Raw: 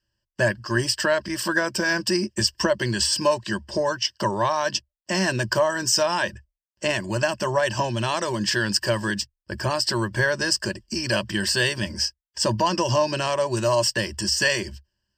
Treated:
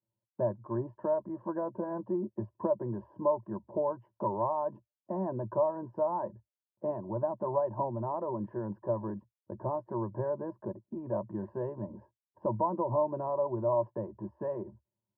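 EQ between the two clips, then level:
Chebyshev band-pass filter 100–970 Hz, order 4
dynamic equaliser 150 Hz, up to −5 dB, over −39 dBFS, Q 0.98
−6.0 dB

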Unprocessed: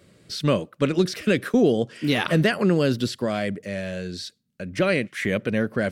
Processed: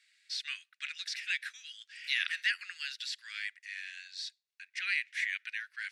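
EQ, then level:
Butterworth high-pass 1,700 Hz 48 dB per octave
high-frequency loss of the air 72 metres
notch filter 3,100 Hz, Q 15
−2.0 dB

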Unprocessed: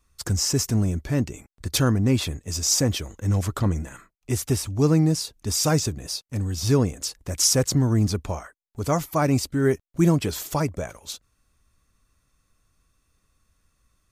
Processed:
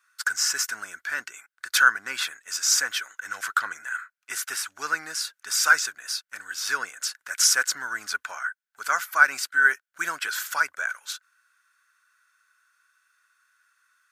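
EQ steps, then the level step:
high-pass with resonance 1,500 Hz, resonance Q 11
0.0 dB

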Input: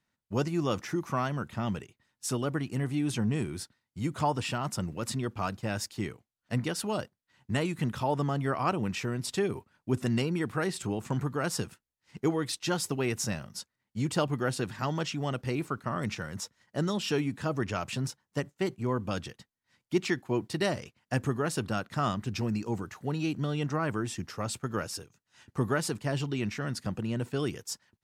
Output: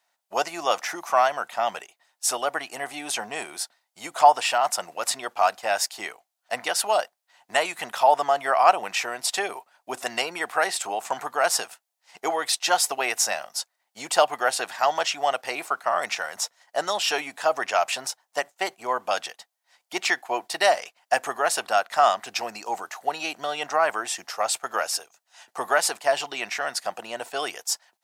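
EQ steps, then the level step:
high-pass with resonance 710 Hz, resonance Q 4.9
high-shelf EQ 2,700 Hz +9 dB
dynamic equaliser 1,900 Hz, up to +4 dB, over −41 dBFS, Q 1.2
+3.0 dB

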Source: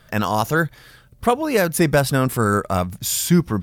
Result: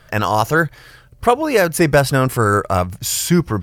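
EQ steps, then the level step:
parametric band 210 Hz −7.5 dB 0.63 octaves
high-shelf EQ 8,700 Hz −6 dB
notch filter 3,600 Hz, Q 12
+4.5 dB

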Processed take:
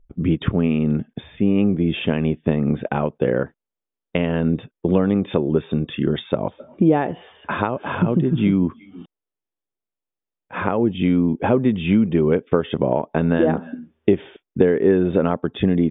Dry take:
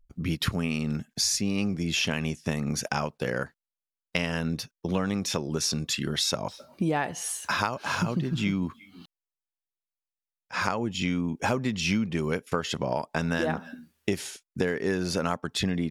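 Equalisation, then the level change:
linear-phase brick-wall low-pass 3,700 Hz
tilt shelving filter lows +4.5 dB
parametric band 380 Hz +8 dB 1.7 octaves
+2.0 dB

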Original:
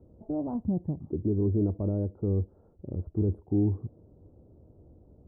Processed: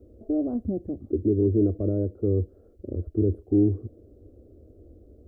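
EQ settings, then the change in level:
phaser with its sweep stopped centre 380 Hz, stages 4
+7.5 dB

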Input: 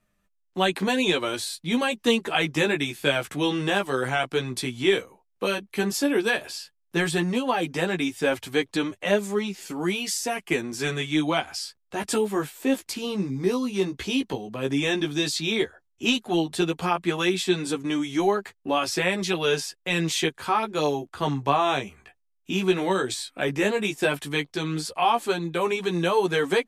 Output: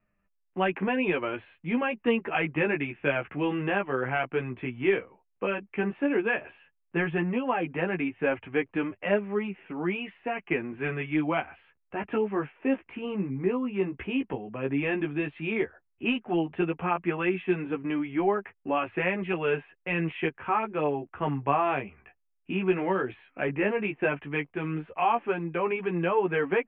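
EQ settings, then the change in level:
Butterworth low-pass 2,800 Hz 72 dB per octave
−3.0 dB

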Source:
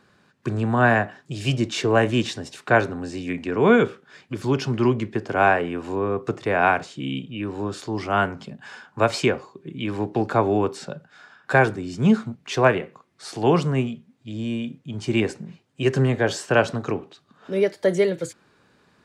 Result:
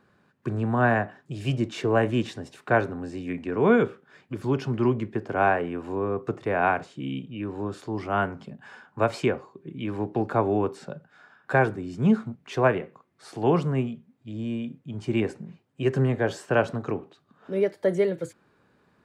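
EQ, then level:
parametric band 5,600 Hz −9 dB 2.3 octaves
−3.0 dB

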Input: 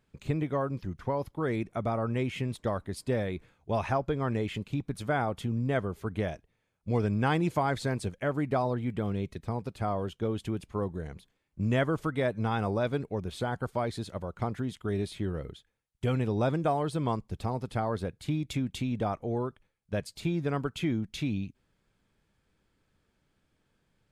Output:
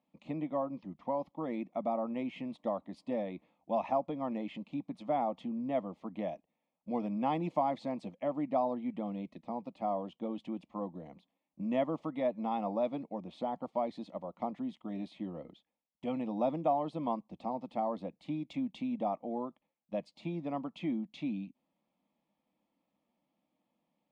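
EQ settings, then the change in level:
band-pass filter 220–2,200 Hz
phaser with its sweep stopped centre 410 Hz, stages 6
0.0 dB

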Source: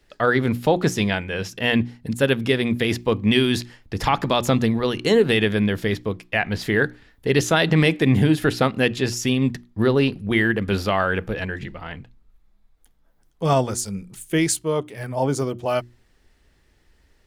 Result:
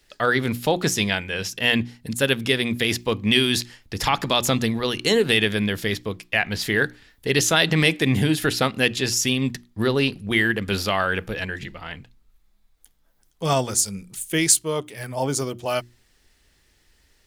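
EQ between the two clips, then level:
high-shelf EQ 2,300 Hz +11.5 dB
−3.5 dB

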